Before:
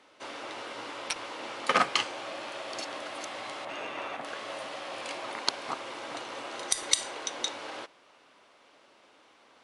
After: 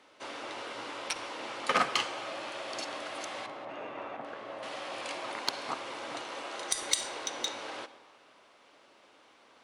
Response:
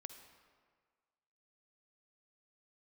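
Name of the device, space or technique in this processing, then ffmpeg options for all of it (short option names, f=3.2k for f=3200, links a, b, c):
saturated reverb return: -filter_complex "[0:a]asettb=1/sr,asplit=3[a][b][c];[a]atrim=end=3.464[d];[b]atrim=start=3.46:end=4.63,asetpts=PTS-STARTPTS,afade=t=in:d=0.004:c=qsin,afade=t=out:st=1.166:d=0.004:c=qsin,lowpass=f=1k:p=1[e];[c]atrim=start=4.626[f];[d][e]acrossfade=d=0.004:c1=hsin:c2=qsin[g];[g][f]acrossfade=d=0.004:c1=qsin:c2=hsin,asettb=1/sr,asplit=3[h][i][j];[h]atrim=end=6.214[k];[i]atrim=start=6.21:end=6.69,asetpts=PTS-STARTPTS,afade=t=in:d=0.004:c=qsin,afade=t=out:st=0.476:d=0.004:c=qsin,highpass=f=210:p=1[l];[j]atrim=start=6.686[m];[k][l]acrossfade=d=0.004:c1=hsin:c2=qsin[n];[n][m]acrossfade=d=0.004:c1=qsin:c2=hsin,asplit=2[o][p];[1:a]atrim=start_sample=2205[q];[p][q]afir=irnorm=-1:irlink=0,asoftclip=type=tanh:threshold=-28dB,volume=4.5dB[r];[o][r]amix=inputs=2:normalize=0,volume=-6dB"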